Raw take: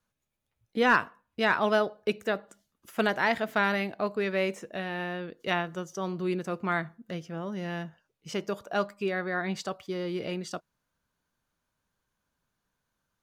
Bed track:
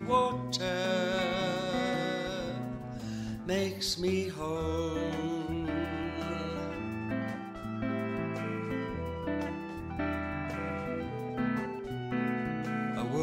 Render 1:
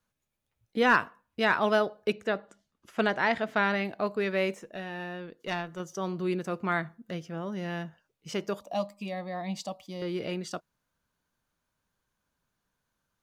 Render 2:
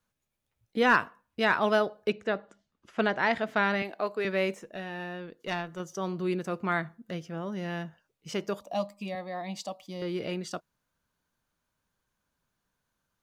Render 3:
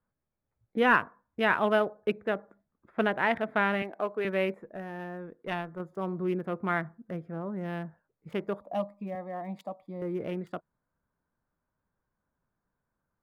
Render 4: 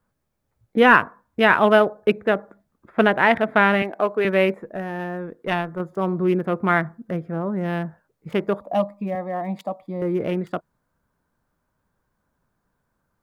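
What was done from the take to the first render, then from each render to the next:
0:02.12–0:03.85: high-frequency loss of the air 60 metres; 0:04.54–0:05.80: tube saturation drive 16 dB, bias 0.65; 0:08.60–0:10.02: phaser with its sweep stopped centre 400 Hz, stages 6
0:02.09–0:03.23: high-frequency loss of the air 61 metres; 0:03.82–0:04.25: high-pass filter 320 Hz; 0:09.15–0:09.82: high-pass filter 210 Hz
adaptive Wiener filter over 15 samples; flat-topped bell 5,600 Hz −13 dB 1.2 octaves
level +10 dB; brickwall limiter −3 dBFS, peak gain reduction 1.5 dB

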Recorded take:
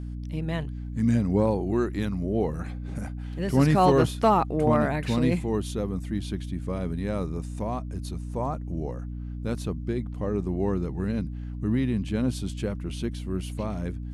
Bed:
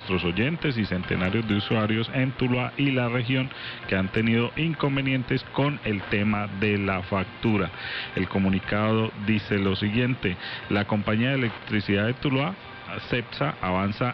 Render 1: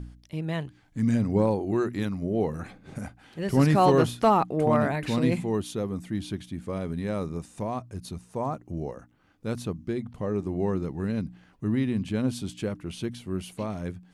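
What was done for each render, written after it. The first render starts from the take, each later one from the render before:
hum removal 60 Hz, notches 5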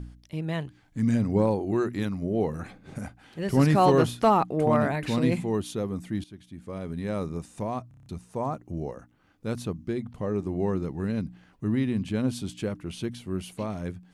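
0:06.24–0:07.17: fade in, from −17 dB
0:07.88: stutter in place 0.03 s, 7 plays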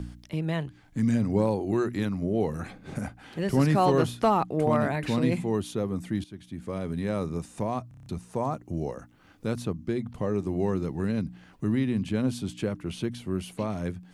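multiband upward and downward compressor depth 40%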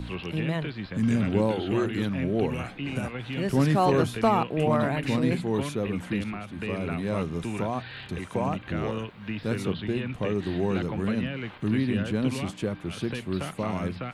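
mix in bed −10 dB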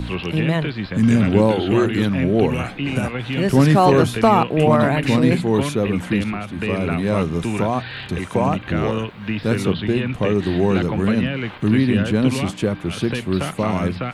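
level +9 dB
brickwall limiter −3 dBFS, peak gain reduction 2 dB

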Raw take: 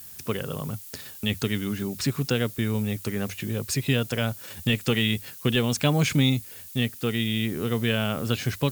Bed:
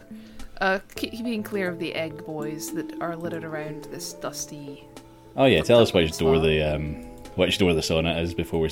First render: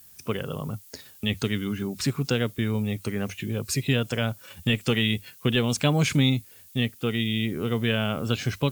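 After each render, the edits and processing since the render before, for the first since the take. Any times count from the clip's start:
noise reduction from a noise print 8 dB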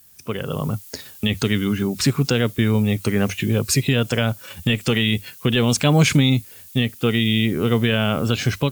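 automatic gain control gain up to 10.5 dB
brickwall limiter −6.5 dBFS, peak gain reduction 4.5 dB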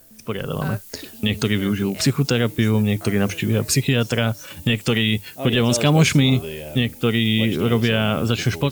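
mix in bed −10.5 dB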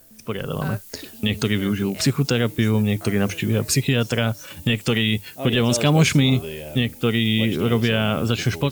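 level −1 dB

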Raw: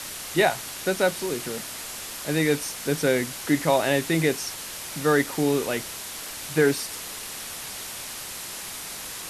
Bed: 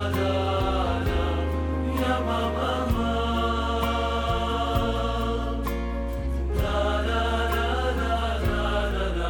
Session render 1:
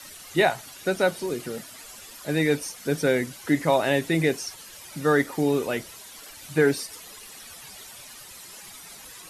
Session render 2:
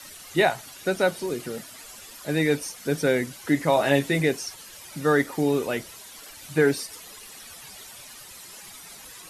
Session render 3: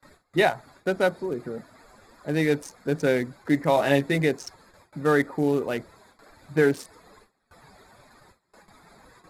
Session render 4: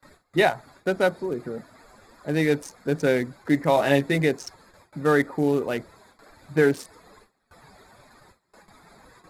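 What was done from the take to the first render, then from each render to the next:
broadband denoise 12 dB, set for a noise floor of −36 dBFS
0:03.75–0:04.20: double-tracking delay 14 ms −4.5 dB
adaptive Wiener filter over 15 samples; noise gate with hold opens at −43 dBFS
level +1 dB

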